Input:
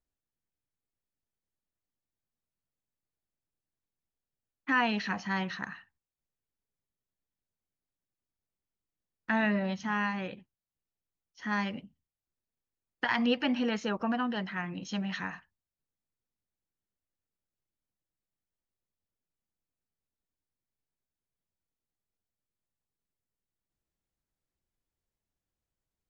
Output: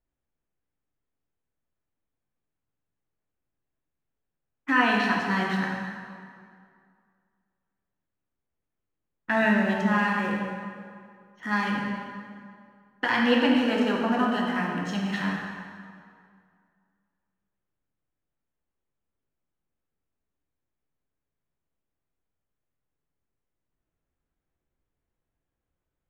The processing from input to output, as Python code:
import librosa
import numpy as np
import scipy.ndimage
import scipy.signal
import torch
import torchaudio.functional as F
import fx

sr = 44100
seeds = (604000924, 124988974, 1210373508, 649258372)

y = fx.wiener(x, sr, points=9)
y = fx.rev_plate(y, sr, seeds[0], rt60_s=2.2, hf_ratio=0.7, predelay_ms=0, drr_db=-2.0)
y = y * librosa.db_to_amplitude(3.0)